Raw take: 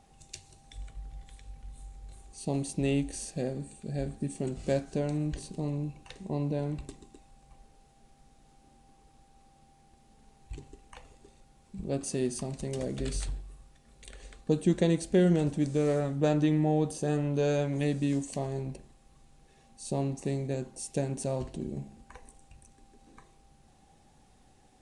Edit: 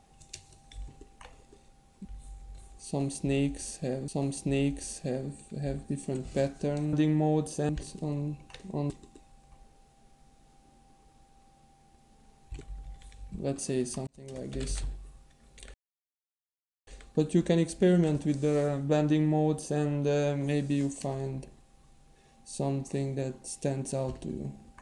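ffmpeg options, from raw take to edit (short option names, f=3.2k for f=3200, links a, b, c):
-filter_complex "[0:a]asplit=11[a][b][c][d][e][f][g][h][i][j][k];[a]atrim=end=0.882[l];[b]atrim=start=10.598:end=11.772[m];[c]atrim=start=1.588:end=3.622[n];[d]atrim=start=2.398:end=5.252[o];[e]atrim=start=16.368:end=17.132[p];[f]atrim=start=5.248:end=6.462[q];[g]atrim=start=6.888:end=10.602[r];[h]atrim=start=0.878:end=1.592[s];[i]atrim=start=11.768:end=12.52,asetpts=PTS-STARTPTS,afade=t=out:st=0.748:d=0.004:c=hsin[t];[j]atrim=start=12.52:end=14.19,asetpts=PTS-STARTPTS,afade=t=in:d=0.62,afade=t=out:st=1.666:d=0.004:c=hsin,apad=pad_dur=1.13[u];[k]atrim=start=14.19,asetpts=PTS-STARTPTS,afade=t=in:d=0.004:c=hsin[v];[l][m]acrossfade=d=0.004:c1=hsin:c2=hsin[w];[w][n]acrossfade=d=0.004:c1=hsin:c2=hsin[x];[x][o]acrossfade=d=0.004:c1=hsin:c2=hsin[y];[y][p]acrossfade=d=0.004:c1=hsin:c2=hsin[z];[z][q]acrossfade=d=0.004:c1=hsin:c2=hsin[aa];[aa][r]acrossfade=d=0.004:c1=hsin:c2=hsin[ab];[ab][s]acrossfade=d=0.004:c1=hsin:c2=hsin[ac];[t][u][v]concat=n=3:v=0:a=1[ad];[ac][ad]acrossfade=d=0.004:c1=hsin:c2=hsin"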